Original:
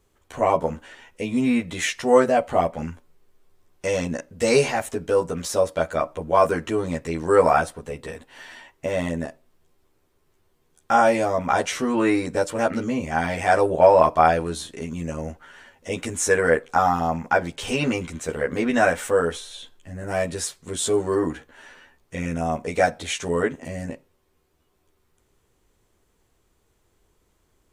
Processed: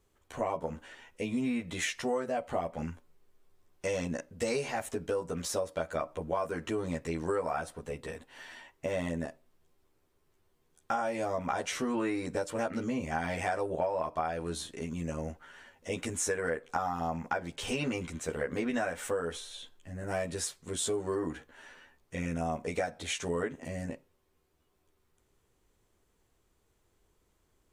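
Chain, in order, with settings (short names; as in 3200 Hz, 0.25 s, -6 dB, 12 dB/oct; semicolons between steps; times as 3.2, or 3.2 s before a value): compressor 10:1, threshold -22 dBFS, peak gain reduction 14 dB; gain -6 dB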